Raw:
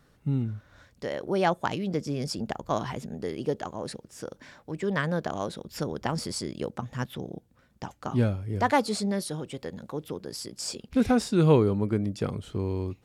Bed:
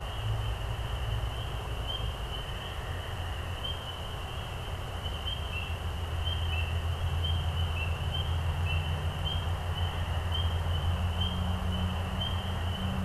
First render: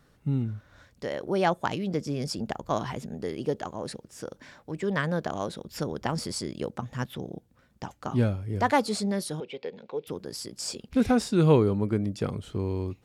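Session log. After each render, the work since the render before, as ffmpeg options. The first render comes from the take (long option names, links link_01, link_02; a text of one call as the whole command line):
ffmpeg -i in.wav -filter_complex "[0:a]asettb=1/sr,asplit=3[link_01][link_02][link_03];[link_01]atrim=end=9.404[link_04];[link_02]atrim=start=9.4:end=10.07,asetpts=PTS-STARTPTS,afade=type=in:duration=0.004:curve=qsin,afade=type=out:start_time=0.666:duration=0.004:curve=qsin,highpass=290,equalizer=frequency=300:width_type=q:width=4:gain=-7,equalizer=frequency=440:width_type=q:width=4:gain=7,equalizer=frequency=640:width_type=q:width=4:gain=-4,equalizer=frequency=1200:width_type=q:width=4:gain=-8,equalizer=frequency=1700:width_type=q:width=4:gain=-5,equalizer=frequency=2400:width_type=q:width=4:gain=8,lowpass=frequency=4400:width=0.5412,lowpass=frequency=4400:width=1.3066[link_05];[link_03]atrim=start=10.066[link_06];[link_04][link_05]acrossfade=duration=0.004:curve1=hsin:curve2=qsin[link_07];[link_07][link_06]acrossfade=duration=0.004:curve1=qsin:curve2=hsin" out.wav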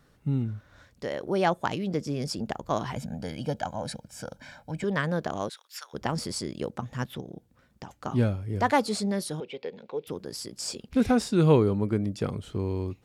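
ffmpeg -i in.wav -filter_complex "[0:a]asettb=1/sr,asplit=3[link_01][link_02][link_03];[link_01]atrim=end=2.954[link_04];[link_02]atrim=start=2.95:end=4.84,asetpts=PTS-STARTPTS,afade=type=in:duration=0.004:curve=qsin,afade=type=out:start_time=1.886:duration=0.004:curve=qsin,aecho=1:1:1.3:0.88,atrim=end_sample=83349[link_05];[link_03]atrim=start=4.836[link_06];[link_04][link_05]acrossfade=duration=0.004:curve1=hsin:curve2=qsin[link_07];[link_07][link_06]acrossfade=duration=0.004:curve1=qsin:curve2=hsin,asplit=3[link_08][link_09][link_10];[link_08]afade=type=out:start_time=5.48:duration=0.02[link_11];[link_09]highpass=frequency=1200:width=0.5412,highpass=frequency=1200:width=1.3066,afade=type=in:start_time=5.48:duration=0.02,afade=type=out:start_time=5.93:duration=0.02[link_12];[link_10]afade=type=in:start_time=5.93:duration=0.02[link_13];[link_11][link_12][link_13]amix=inputs=3:normalize=0,asettb=1/sr,asplit=3[link_14][link_15][link_16];[link_14]atrim=end=7.204[link_17];[link_15]atrim=start=7.2:end=7.94,asetpts=PTS-STARTPTS,afade=type=in:duration=0.004:curve=qsin,afade=type=out:start_time=0.736:duration=0.004:curve=qsin,acompressor=threshold=-37dB:ratio=3:attack=3.2:release=140:knee=1:detection=peak[link_18];[link_16]atrim=start=7.936[link_19];[link_17][link_18]acrossfade=duration=0.004:curve1=hsin:curve2=qsin[link_20];[link_20][link_19]acrossfade=duration=0.004:curve1=qsin:curve2=hsin" out.wav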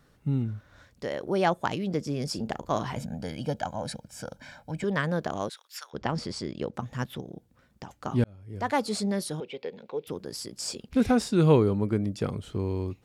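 ffmpeg -i in.wav -filter_complex "[0:a]asettb=1/sr,asplit=3[link_01][link_02][link_03];[link_01]atrim=end=2.294[link_04];[link_02]atrim=start=2.29:end=3.05,asetpts=PTS-STARTPTS,afade=type=in:duration=0.004:curve=qsin,afade=type=out:start_time=0.756:duration=0.004:curve=qsin,asplit=2[link_05][link_06];[link_06]adelay=36,volume=-12.5dB[link_07];[link_05][link_07]amix=inputs=2:normalize=0,atrim=end_sample=33516[link_08];[link_03]atrim=start=3.046[link_09];[link_04][link_08]acrossfade=duration=0.004:curve1=hsin:curve2=qsin[link_10];[link_10][link_09]acrossfade=duration=0.004:curve1=qsin:curve2=hsin,asettb=1/sr,asplit=3[link_11][link_12][link_13];[link_11]atrim=end=5.904[link_14];[link_12]atrim=start=5.9:end=6.74,asetpts=PTS-STARTPTS,afade=type=in:duration=0.004:curve=qsin,afade=type=out:start_time=0.836:duration=0.004:curve=qsin,lowpass=5100[link_15];[link_13]atrim=start=6.736[link_16];[link_14][link_15]acrossfade=duration=0.004:curve1=hsin:curve2=qsin[link_17];[link_17][link_16]acrossfade=duration=0.004:curve1=qsin:curve2=hsin,asplit=2[link_18][link_19];[link_18]atrim=end=8.24,asetpts=PTS-STARTPTS,afade=type=out:start_time=8.236:duration=0.004:curve=hsin[link_20];[link_19]atrim=start=8.24,asetpts=PTS-STARTPTS,afade=type=in:duration=0.76[link_21];[link_20][link_21]concat=n=2:v=0:a=1" out.wav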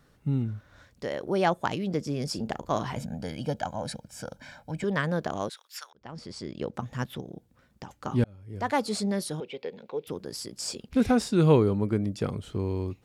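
ffmpeg -i in.wav -filter_complex "[0:a]asettb=1/sr,asplit=3[link_01][link_02][link_03];[link_01]atrim=end=7.844[link_04];[link_02]atrim=start=7.84:end=8.48,asetpts=PTS-STARTPTS,afade=type=in:duration=0.004:curve=qsin,afade=type=out:start_time=0.636:duration=0.004:curve=qsin,asuperstop=centerf=690:order=4:qfactor=7.9[link_05];[link_03]atrim=start=8.476[link_06];[link_04][link_05]acrossfade=duration=0.004:curve1=hsin:curve2=qsin[link_07];[link_07][link_06]acrossfade=duration=0.004:curve1=qsin:curve2=hsin,asplit=2[link_08][link_09];[link_08]atrim=end=5.93,asetpts=PTS-STARTPTS,afade=type=out:start_time=5.926:duration=0.004:curve=hsin[link_10];[link_09]atrim=start=5.93,asetpts=PTS-STARTPTS,afade=type=in:duration=0.76[link_11];[link_10][link_11]concat=n=2:v=0:a=1" out.wav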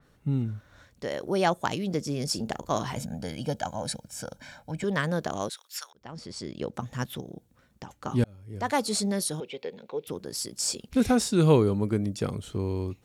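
ffmpeg -i in.wav -af "bandreject=frequency=4900:width=18,adynamicequalizer=threshold=0.00316:dfrequency=4000:dqfactor=0.7:tfrequency=4000:tqfactor=0.7:attack=5:release=100:ratio=0.375:range=4:mode=boostabove:tftype=highshelf" out.wav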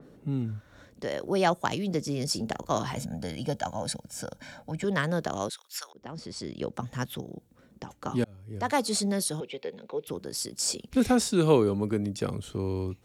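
ffmpeg -i in.wav -filter_complex "[0:a]acrossover=split=190|530|6900[link_01][link_02][link_03][link_04];[link_01]alimiter=level_in=7dB:limit=-24dB:level=0:latency=1,volume=-7dB[link_05];[link_02]acompressor=mode=upward:threshold=-39dB:ratio=2.5[link_06];[link_05][link_06][link_03][link_04]amix=inputs=4:normalize=0" out.wav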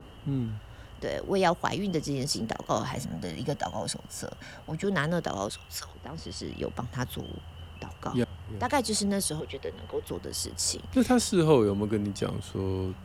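ffmpeg -i in.wav -i bed.wav -filter_complex "[1:a]volume=-14dB[link_01];[0:a][link_01]amix=inputs=2:normalize=0" out.wav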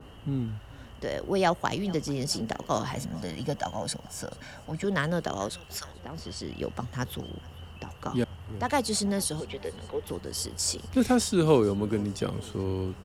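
ffmpeg -i in.wav -af "aecho=1:1:437|874|1311|1748:0.0708|0.0404|0.023|0.0131" out.wav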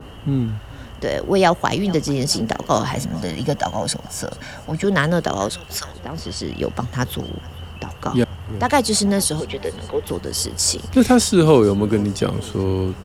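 ffmpeg -i in.wav -af "volume=10dB,alimiter=limit=-3dB:level=0:latency=1" out.wav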